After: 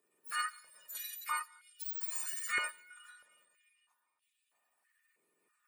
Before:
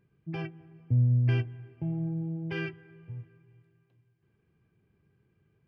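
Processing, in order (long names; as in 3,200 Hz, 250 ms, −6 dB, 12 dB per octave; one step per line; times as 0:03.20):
frequency axis turned over on the octave scale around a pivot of 1,700 Hz
formants moved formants +3 semitones
high-pass on a step sequencer 3.1 Hz 410–3,100 Hz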